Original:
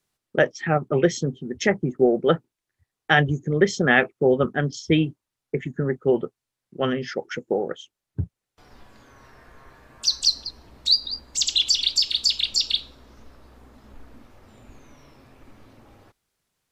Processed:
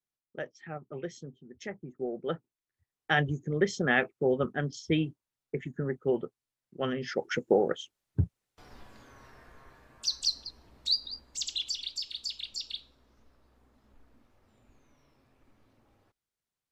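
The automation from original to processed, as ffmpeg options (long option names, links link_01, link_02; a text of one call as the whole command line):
ffmpeg -i in.wav -af "afade=type=in:start_time=1.88:duration=1.34:silence=0.281838,afade=type=in:start_time=6.94:duration=0.43:silence=0.398107,afade=type=out:start_time=8.23:duration=1.86:silence=0.354813,afade=type=out:start_time=10.92:duration=0.96:silence=0.473151" out.wav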